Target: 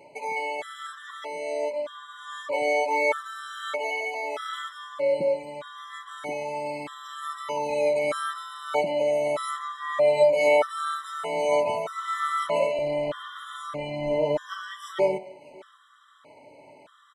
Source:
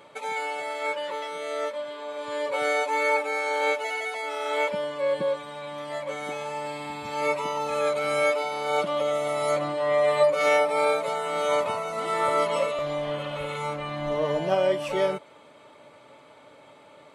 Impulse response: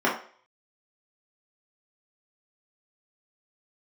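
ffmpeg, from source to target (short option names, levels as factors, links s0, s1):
-filter_complex "[0:a]aecho=1:1:606:0.0668,asplit=2[s0][s1];[1:a]atrim=start_sample=2205[s2];[s1][s2]afir=irnorm=-1:irlink=0,volume=0.0447[s3];[s0][s3]amix=inputs=2:normalize=0,afftfilt=real='re*gt(sin(2*PI*0.8*pts/sr)*(1-2*mod(floor(b*sr/1024/1000),2)),0)':imag='im*gt(sin(2*PI*0.8*pts/sr)*(1-2*mod(floor(b*sr/1024/1000),2)),0)':win_size=1024:overlap=0.75"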